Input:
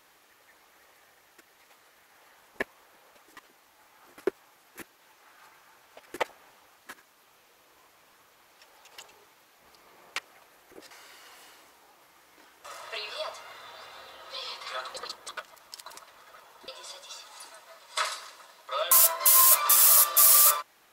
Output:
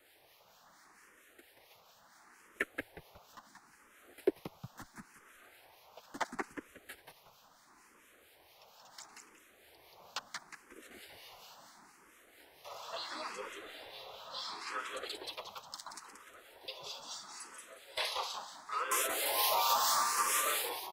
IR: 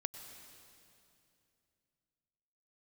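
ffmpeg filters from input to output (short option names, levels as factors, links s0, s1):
-filter_complex "[0:a]acrossover=split=5300[s0][s1];[s1]acompressor=threshold=0.0224:ratio=4:attack=1:release=60[s2];[s0][s2]amix=inputs=2:normalize=0,acrossover=split=330|1000|2000[s3][s4][s5][s6];[s6]aeval=exprs='clip(val(0),-1,0.0596)':c=same[s7];[s3][s4][s5][s7]amix=inputs=4:normalize=0,asplit=5[s8][s9][s10][s11][s12];[s9]adelay=181,afreqshift=-110,volume=0.631[s13];[s10]adelay=362,afreqshift=-220,volume=0.214[s14];[s11]adelay=543,afreqshift=-330,volume=0.0733[s15];[s12]adelay=724,afreqshift=-440,volume=0.0248[s16];[s8][s13][s14][s15][s16]amix=inputs=5:normalize=0,acrossover=split=1600[s17][s18];[s17]aeval=exprs='val(0)*(1-0.5/2+0.5/2*cos(2*PI*4.4*n/s))':c=same[s19];[s18]aeval=exprs='val(0)*(1-0.5/2-0.5/2*cos(2*PI*4.4*n/s))':c=same[s20];[s19][s20]amix=inputs=2:normalize=0,asplit=2[s21][s22];[s22]asetrate=35002,aresample=44100,atempo=1.25992,volume=0.447[s23];[s21][s23]amix=inputs=2:normalize=0,asplit=2[s24][s25];[s25]afreqshift=0.73[s26];[s24][s26]amix=inputs=2:normalize=1"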